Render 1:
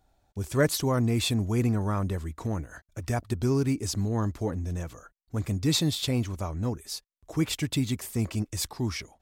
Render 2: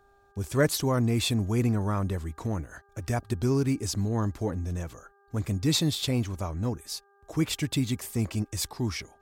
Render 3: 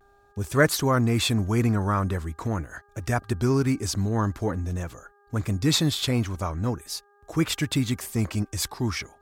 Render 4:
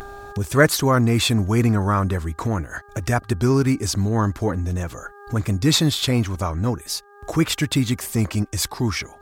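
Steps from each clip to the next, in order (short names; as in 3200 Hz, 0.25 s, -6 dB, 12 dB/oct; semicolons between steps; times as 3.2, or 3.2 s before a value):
buzz 400 Hz, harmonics 4, -63 dBFS -2 dB/oct
vibrato 0.45 Hz 34 cents; dynamic EQ 1400 Hz, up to +7 dB, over -49 dBFS, Q 1.3; gain +2.5 dB
upward compressor, threshold -26 dBFS; gain +4.5 dB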